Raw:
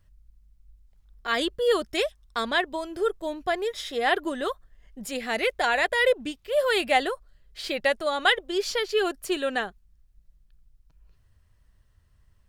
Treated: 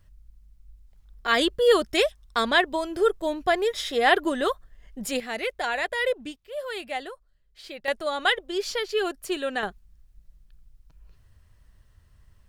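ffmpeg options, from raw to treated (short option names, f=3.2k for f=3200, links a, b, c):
-af "asetnsamples=n=441:p=0,asendcmd='5.2 volume volume -4dB;6.36 volume volume -10dB;7.88 volume volume -1.5dB;9.63 volume volume 5dB',volume=4dB"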